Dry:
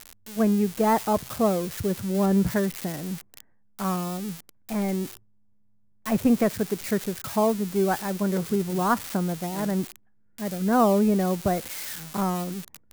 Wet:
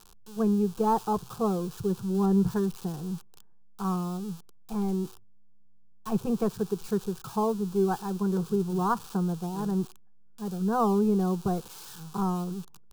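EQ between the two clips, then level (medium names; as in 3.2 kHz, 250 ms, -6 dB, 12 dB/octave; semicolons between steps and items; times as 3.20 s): low-pass 3.5 kHz 6 dB/octave; bass shelf 61 Hz +10.5 dB; static phaser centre 400 Hz, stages 8; -1.5 dB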